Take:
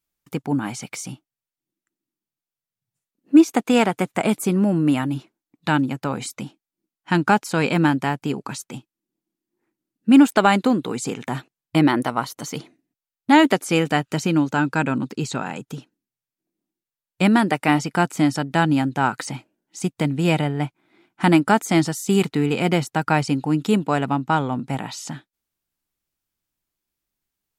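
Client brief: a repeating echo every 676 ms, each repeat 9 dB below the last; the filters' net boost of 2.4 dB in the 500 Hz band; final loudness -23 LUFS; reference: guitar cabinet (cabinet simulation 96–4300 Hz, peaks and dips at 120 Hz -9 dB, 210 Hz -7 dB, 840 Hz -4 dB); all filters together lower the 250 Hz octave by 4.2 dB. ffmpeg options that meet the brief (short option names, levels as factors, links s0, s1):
-af "highpass=96,equalizer=f=120:t=q:w=4:g=-9,equalizer=f=210:t=q:w=4:g=-7,equalizer=f=840:t=q:w=4:g=-4,lowpass=f=4300:w=0.5412,lowpass=f=4300:w=1.3066,equalizer=f=250:t=o:g=-5,equalizer=f=500:t=o:g=5.5,aecho=1:1:676|1352|2028|2704:0.355|0.124|0.0435|0.0152,volume=0.944"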